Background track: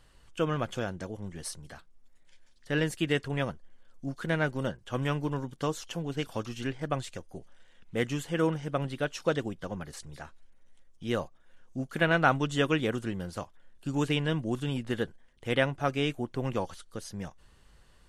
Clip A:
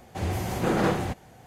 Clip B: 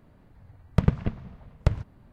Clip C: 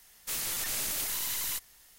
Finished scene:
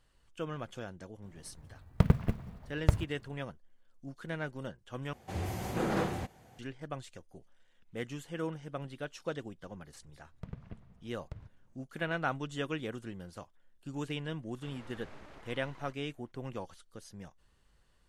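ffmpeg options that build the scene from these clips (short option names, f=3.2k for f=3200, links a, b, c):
-filter_complex "[2:a]asplit=2[a][b];[0:a]volume=-9.5dB[c];[a]acrusher=bits=8:mode=log:mix=0:aa=0.000001[d];[b]alimiter=limit=-15dB:level=0:latency=1:release=69[e];[3:a]lowpass=1.2k[f];[c]asplit=2[g][h];[g]atrim=end=5.134[i];[1:a]atrim=end=1.46,asetpts=PTS-STARTPTS,volume=-7.5dB[j];[h]atrim=start=6.586[k];[d]atrim=end=2.12,asetpts=PTS-STARTPTS,volume=-3dB,afade=t=in:d=0.004:c=hsin,afade=t=out:st=2.116:d=0.004:c=hsin,adelay=1220[l];[e]atrim=end=2.12,asetpts=PTS-STARTPTS,volume=-17dB,afade=t=in:d=0.004:c=hsin,afade=t=out:st=2.116:d=0.004:c=hsin,adelay=9650[m];[f]atrim=end=1.98,asetpts=PTS-STARTPTS,volume=-6.5dB,afade=t=in:d=0.004:c=hsin,afade=t=out:st=1.976:d=0.004:c=hsin,adelay=14340[n];[i][j]acrossfade=d=0.004:c1=hsin:c2=hsin[o];[o][k]acrossfade=d=0.004:c1=hsin:c2=hsin[p];[p][l][m][n]amix=inputs=4:normalize=0"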